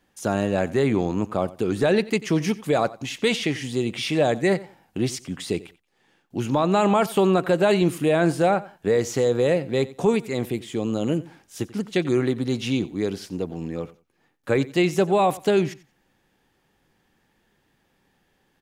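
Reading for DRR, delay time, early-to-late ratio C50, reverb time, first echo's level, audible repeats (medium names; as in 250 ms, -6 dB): no reverb, 90 ms, no reverb, no reverb, -19.0 dB, 2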